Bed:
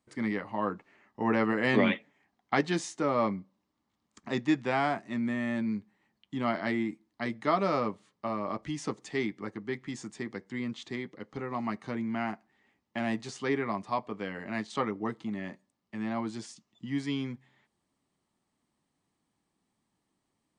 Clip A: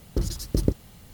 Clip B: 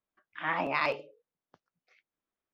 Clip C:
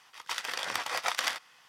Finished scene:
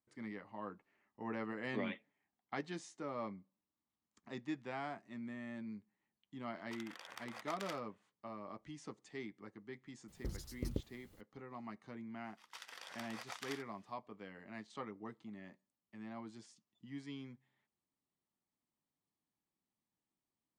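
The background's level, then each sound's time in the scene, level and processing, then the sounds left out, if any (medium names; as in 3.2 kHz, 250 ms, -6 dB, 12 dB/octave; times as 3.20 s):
bed -15 dB
6.42 s: add C -17.5 dB + local Wiener filter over 9 samples
10.08 s: add A -17 dB
12.24 s: add C -17.5 dB
not used: B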